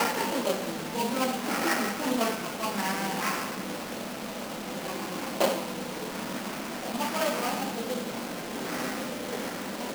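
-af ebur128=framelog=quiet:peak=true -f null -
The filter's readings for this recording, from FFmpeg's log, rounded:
Integrated loudness:
  I:         -30.8 LUFS
  Threshold: -40.8 LUFS
Loudness range:
  LRA:         3.8 LU
  Threshold: -50.9 LUFS
  LRA low:   -32.7 LUFS
  LRA high:  -28.9 LUFS
True peak:
  Peak:       -9.4 dBFS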